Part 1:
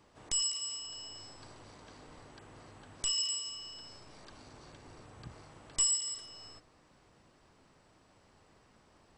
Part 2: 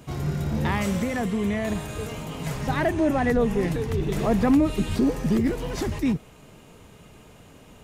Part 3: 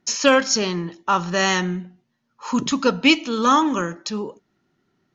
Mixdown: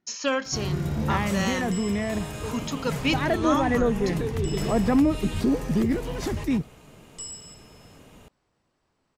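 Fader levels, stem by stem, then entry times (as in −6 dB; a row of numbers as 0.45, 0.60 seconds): −9.0, −1.0, −10.0 decibels; 1.40, 0.45, 0.00 seconds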